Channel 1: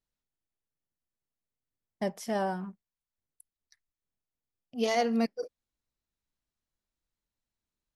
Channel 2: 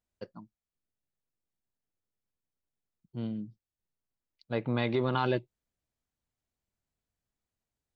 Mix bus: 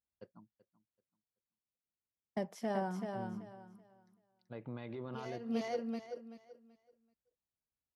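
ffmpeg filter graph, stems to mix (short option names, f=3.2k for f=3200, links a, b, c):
-filter_complex "[0:a]agate=range=-13dB:threshold=-47dB:ratio=16:detection=peak,acrossover=split=120|3000[a][b][c];[b]acompressor=threshold=-29dB:ratio=6[d];[a][d][c]amix=inputs=3:normalize=0,adelay=350,volume=-3dB,asplit=2[e][f];[f]volume=-5.5dB[g];[1:a]alimiter=limit=-24dB:level=0:latency=1:release=54,volume=-10.5dB,asplit=3[h][i][j];[i]volume=-18dB[k];[j]apad=whole_len=366177[l];[e][l]sidechaincompress=threshold=-52dB:ratio=8:attack=16:release=273[m];[g][k]amix=inputs=2:normalize=0,aecho=0:1:382|764|1146|1528:1|0.24|0.0576|0.0138[n];[m][h][n]amix=inputs=3:normalize=0,highpass=43,highshelf=f=3.4k:g=-10.5"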